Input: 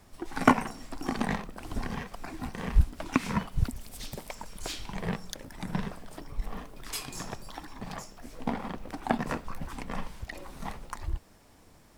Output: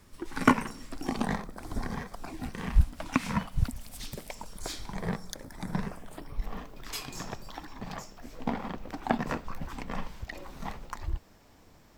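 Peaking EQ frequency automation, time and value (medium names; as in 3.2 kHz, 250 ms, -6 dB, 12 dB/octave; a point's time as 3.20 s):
peaking EQ -11.5 dB 0.33 oct
0.88 s 720 Hz
1.34 s 2.8 kHz
2.13 s 2.8 kHz
2.77 s 380 Hz
3.92 s 380 Hz
4.59 s 2.8 kHz
5.75 s 2.8 kHz
6.49 s 9.7 kHz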